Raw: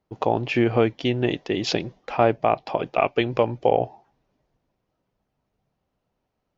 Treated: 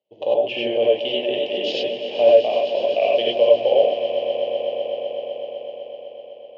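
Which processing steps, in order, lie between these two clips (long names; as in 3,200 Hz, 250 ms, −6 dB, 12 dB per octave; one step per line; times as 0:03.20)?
pair of resonant band-passes 1,300 Hz, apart 2.4 octaves
echo that builds up and dies away 126 ms, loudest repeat 5, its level −14.5 dB
reverb whose tail is shaped and stops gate 120 ms rising, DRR −3 dB
level +5.5 dB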